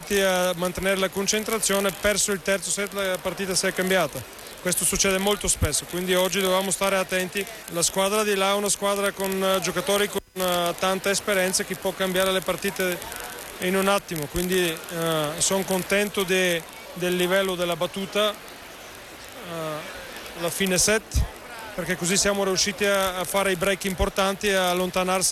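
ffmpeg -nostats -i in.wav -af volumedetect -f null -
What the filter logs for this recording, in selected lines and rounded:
mean_volume: -24.5 dB
max_volume: -10.3 dB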